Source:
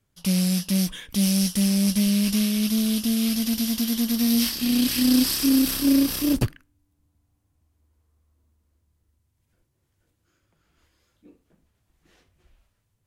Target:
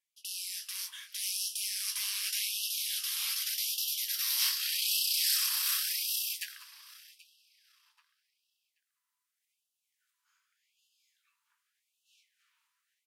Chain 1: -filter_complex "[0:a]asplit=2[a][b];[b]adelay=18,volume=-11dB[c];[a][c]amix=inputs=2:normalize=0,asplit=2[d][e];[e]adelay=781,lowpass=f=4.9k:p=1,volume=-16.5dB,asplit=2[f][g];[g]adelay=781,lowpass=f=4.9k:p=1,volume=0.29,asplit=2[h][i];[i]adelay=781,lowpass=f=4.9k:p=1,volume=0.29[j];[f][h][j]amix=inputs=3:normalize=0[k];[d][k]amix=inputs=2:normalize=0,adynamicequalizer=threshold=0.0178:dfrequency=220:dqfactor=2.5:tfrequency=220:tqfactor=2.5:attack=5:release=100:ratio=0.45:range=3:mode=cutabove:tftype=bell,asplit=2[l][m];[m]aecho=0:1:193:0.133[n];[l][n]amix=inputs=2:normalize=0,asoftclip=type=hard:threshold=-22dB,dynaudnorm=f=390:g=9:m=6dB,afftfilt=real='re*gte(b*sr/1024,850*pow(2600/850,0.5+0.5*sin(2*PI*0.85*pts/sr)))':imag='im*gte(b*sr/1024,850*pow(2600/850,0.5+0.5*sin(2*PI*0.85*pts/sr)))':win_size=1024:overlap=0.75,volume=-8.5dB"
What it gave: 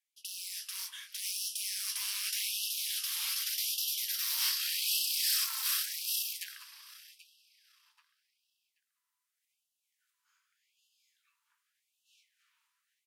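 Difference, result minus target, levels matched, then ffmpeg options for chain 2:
hard clip: distortion +32 dB
-filter_complex "[0:a]asplit=2[a][b];[b]adelay=18,volume=-11dB[c];[a][c]amix=inputs=2:normalize=0,asplit=2[d][e];[e]adelay=781,lowpass=f=4.9k:p=1,volume=-16.5dB,asplit=2[f][g];[g]adelay=781,lowpass=f=4.9k:p=1,volume=0.29,asplit=2[h][i];[i]adelay=781,lowpass=f=4.9k:p=1,volume=0.29[j];[f][h][j]amix=inputs=3:normalize=0[k];[d][k]amix=inputs=2:normalize=0,adynamicequalizer=threshold=0.0178:dfrequency=220:dqfactor=2.5:tfrequency=220:tqfactor=2.5:attack=5:release=100:ratio=0.45:range=3:mode=cutabove:tftype=bell,asplit=2[l][m];[m]aecho=0:1:193:0.133[n];[l][n]amix=inputs=2:normalize=0,asoftclip=type=hard:threshold=-11dB,dynaudnorm=f=390:g=9:m=6dB,afftfilt=real='re*gte(b*sr/1024,850*pow(2600/850,0.5+0.5*sin(2*PI*0.85*pts/sr)))':imag='im*gte(b*sr/1024,850*pow(2600/850,0.5+0.5*sin(2*PI*0.85*pts/sr)))':win_size=1024:overlap=0.75,volume=-8.5dB"

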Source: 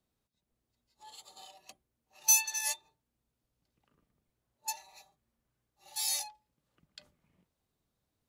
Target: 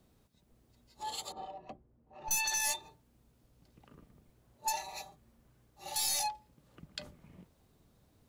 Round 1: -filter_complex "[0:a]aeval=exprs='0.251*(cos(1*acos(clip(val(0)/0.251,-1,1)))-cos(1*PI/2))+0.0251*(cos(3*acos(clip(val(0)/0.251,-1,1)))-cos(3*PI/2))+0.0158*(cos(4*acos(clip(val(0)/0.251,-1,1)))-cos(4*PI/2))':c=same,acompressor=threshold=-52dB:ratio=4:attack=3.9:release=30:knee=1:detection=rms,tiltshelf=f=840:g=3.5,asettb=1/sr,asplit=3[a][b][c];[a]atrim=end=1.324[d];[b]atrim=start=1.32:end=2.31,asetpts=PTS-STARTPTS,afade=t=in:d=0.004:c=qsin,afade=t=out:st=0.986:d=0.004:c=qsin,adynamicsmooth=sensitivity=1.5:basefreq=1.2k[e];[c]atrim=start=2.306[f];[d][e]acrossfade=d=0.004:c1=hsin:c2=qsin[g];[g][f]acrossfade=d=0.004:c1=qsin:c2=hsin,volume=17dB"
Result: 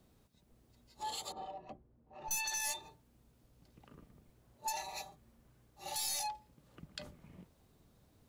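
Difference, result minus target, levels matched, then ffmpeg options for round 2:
compressor: peak gain reduction +5 dB
-filter_complex "[0:a]aeval=exprs='0.251*(cos(1*acos(clip(val(0)/0.251,-1,1)))-cos(1*PI/2))+0.0251*(cos(3*acos(clip(val(0)/0.251,-1,1)))-cos(3*PI/2))+0.0158*(cos(4*acos(clip(val(0)/0.251,-1,1)))-cos(4*PI/2))':c=same,acompressor=threshold=-45.5dB:ratio=4:attack=3.9:release=30:knee=1:detection=rms,tiltshelf=f=840:g=3.5,asettb=1/sr,asplit=3[a][b][c];[a]atrim=end=1.324[d];[b]atrim=start=1.32:end=2.31,asetpts=PTS-STARTPTS,afade=t=in:d=0.004:c=qsin,afade=t=out:st=0.986:d=0.004:c=qsin,adynamicsmooth=sensitivity=1.5:basefreq=1.2k[e];[c]atrim=start=2.306[f];[d][e]acrossfade=d=0.004:c1=hsin:c2=qsin[g];[g][f]acrossfade=d=0.004:c1=qsin:c2=hsin,volume=17dB"

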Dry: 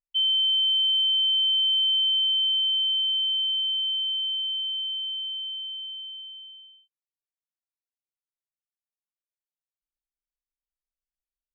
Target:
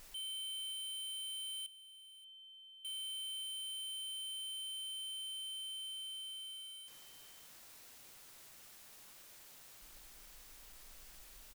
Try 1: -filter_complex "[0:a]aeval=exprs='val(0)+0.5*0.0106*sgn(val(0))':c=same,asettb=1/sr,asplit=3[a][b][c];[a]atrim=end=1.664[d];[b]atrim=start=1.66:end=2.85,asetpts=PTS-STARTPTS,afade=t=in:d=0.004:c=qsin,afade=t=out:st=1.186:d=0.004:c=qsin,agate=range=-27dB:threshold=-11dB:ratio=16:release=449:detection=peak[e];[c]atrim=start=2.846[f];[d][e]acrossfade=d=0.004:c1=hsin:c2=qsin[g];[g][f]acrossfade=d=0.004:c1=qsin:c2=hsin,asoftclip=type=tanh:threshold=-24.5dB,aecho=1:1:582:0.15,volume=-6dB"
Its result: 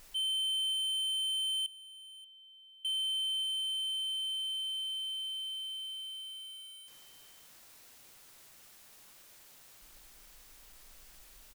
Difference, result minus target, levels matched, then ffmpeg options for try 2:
soft clip: distortion -9 dB
-filter_complex "[0:a]aeval=exprs='val(0)+0.5*0.0106*sgn(val(0))':c=same,asettb=1/sr,asplit=3[a][b][c];[a]atrim=end=1.664[d];[b]atrim=start=1.66:end=2.85,asetpts=PTS-STARTPTS,afade=t=in:d=0.004:c=qsin,afade=t=out:st=1.186:d=0.004:c=qsin,agate=range=-27dB:threshold=-11dB:ratio=16:release=449:detection=peak[e];[c]atrim=start=2.846[f];[d][e]acrossfade=d=0.004:c1=hsin:c2=qsin[g];[g][f]acrossfade=d=0.004:c1=qsin:c2=hsin,asoftclip=type=tanh:threshold=-36.5dB,aecho=1:1:582:0.15,volume=-6dB"

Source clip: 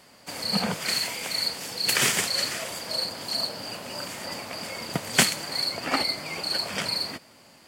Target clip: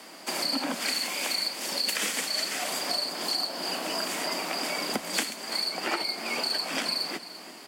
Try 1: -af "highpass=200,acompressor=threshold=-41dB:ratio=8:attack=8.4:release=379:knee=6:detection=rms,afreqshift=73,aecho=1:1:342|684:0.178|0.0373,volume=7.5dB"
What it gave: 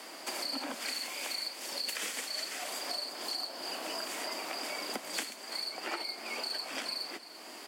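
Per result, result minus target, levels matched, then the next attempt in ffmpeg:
125 Hz band -8.5 dB; compressor: peak gain reduction +7.5 dB
-af "highpass=91,acompressor=threshold=-41dB:ratio=8:attack=8.4:release=379:knee=6:detection=rms,afreqshift=73,aecho=1:1:342|684:0.178|0.0373,volume=7.5dB"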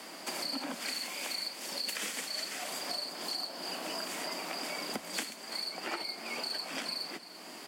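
compressor: peak gain reduction +8 dB
-af "highpass=91,acompressor=threshold=-32dB:ratio=8:attack=8.4:release=379:knee=6:detection=rms,afreqshift=73,aecho=1:1:342|684:0.178|0.0373,volume=7.5dB"

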